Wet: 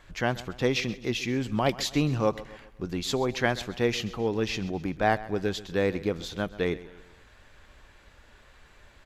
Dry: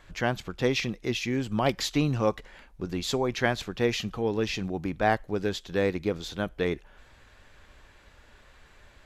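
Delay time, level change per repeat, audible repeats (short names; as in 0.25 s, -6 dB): 0.131 s, -6.5 dB, 3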